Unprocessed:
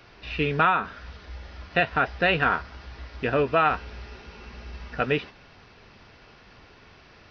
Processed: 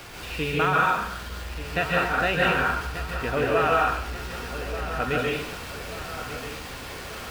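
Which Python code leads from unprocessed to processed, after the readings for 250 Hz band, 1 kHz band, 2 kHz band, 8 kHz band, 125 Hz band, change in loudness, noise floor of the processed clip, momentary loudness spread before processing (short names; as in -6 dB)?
+1.0 dB, +1.5 dB, +1.5 dB, n/a, +2.0 dB, -1.5 dB, -38 dBFS, 21 LU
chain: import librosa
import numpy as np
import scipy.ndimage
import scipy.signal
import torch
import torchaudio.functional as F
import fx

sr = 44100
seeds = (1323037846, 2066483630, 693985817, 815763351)

y = x + 0.5 * 10.0 ** (-33.0 / 20.0) * np.sign(x)
y = fx.echo_wet_lowpass(y, sr, ms=1186, feedback_pct=52, hz=3800.0, wet_db=-12)
y = fx.rev_plate(y, sr, seeds[0], rt60_s=0.68, hf_ratio=1.0, predelay_ms=120, drr_db=-3.0)
y = y * librosa.db_to_amplitude(-5.0)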